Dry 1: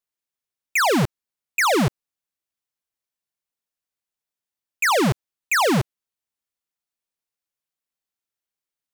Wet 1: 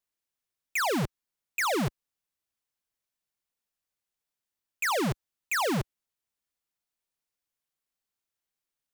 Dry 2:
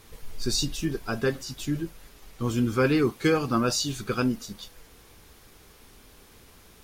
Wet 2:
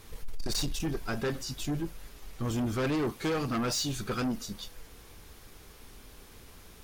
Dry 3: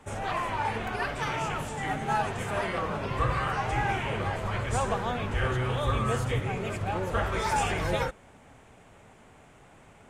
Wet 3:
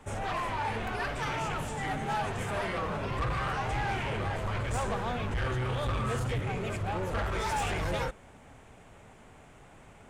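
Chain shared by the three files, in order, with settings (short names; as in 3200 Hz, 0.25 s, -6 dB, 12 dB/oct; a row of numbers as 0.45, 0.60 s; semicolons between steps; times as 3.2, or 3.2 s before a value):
low shelf 62 Hz +5.5 dB; soft clip -26.5 dBFS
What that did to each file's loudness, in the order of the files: -9.0, -5.5, -3.0 LU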